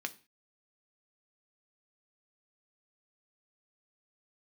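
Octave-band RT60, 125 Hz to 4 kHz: 0.40, 0.40, 0.30, 0.35, 0.40, 0.35 seconds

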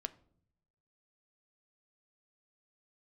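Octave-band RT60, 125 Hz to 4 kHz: 1.3, 0.95, 0.75, 0.55, 0.40, 0.35 seconds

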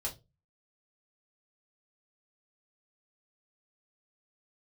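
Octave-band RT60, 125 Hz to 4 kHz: 0.45, 0.35, 0.30, 0.20, 0.20, 0.20 seconds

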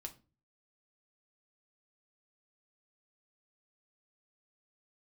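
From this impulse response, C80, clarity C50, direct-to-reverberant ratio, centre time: 22.5 dB, 16.0 dB, 3.5 dB, 8 ms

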